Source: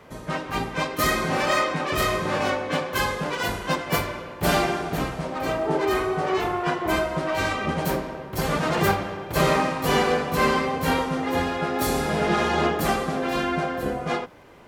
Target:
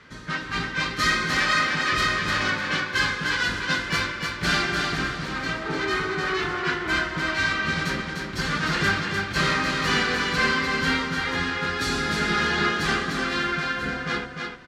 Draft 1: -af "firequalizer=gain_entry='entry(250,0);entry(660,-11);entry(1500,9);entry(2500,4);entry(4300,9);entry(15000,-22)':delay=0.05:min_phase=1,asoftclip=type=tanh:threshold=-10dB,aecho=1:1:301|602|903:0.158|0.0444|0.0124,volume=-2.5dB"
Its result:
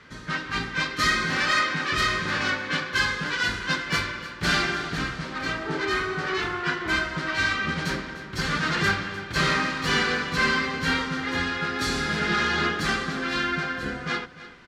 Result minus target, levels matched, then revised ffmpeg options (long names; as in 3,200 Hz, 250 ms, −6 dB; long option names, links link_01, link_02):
echo-to-direct −11.5 dB
-af "firequalizer=gain_entry='entry(250,0);entry(660,-11);entry(1500,9);entry(2500,4);entry(4300,9);entry(15000,-22)':delay=0.05:min_phase=1,asoftclip=type=tanh:threshold=-10dB,aecho=1:1:301|602|903|1204:0.596|0.167|0.0467|0.0131,volume=-2.5dB"